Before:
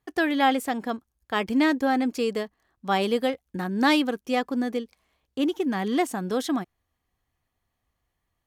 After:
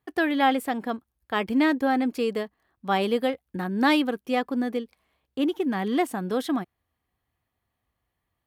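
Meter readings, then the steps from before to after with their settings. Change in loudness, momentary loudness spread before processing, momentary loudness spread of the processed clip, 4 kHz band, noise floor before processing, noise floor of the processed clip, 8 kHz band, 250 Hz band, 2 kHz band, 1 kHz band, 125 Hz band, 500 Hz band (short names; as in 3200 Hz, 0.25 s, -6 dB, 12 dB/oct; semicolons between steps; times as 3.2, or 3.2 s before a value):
0.0 dB, 12 LU, 12 LU, -1.5 dB, -80 dBFS, -82 dBFS, -5.0 dB, 0.0 dB, -0.5 dB, 0.0 dB, n/a, 0.0 dB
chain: HPF 51 Hz; bell 6400 Hz -8.5 dB 0.84 oct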